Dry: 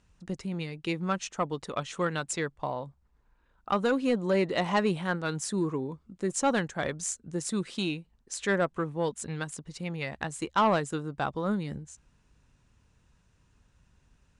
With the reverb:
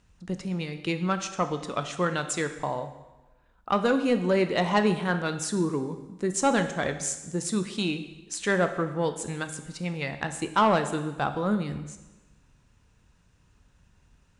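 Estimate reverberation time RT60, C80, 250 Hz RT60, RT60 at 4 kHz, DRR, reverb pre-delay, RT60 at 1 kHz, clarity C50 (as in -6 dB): 1.1 s, 12.5 dB, 1.1 s, 1.0 s, 8.0 dB, 6 ms, 1.1 s, 10.5 dB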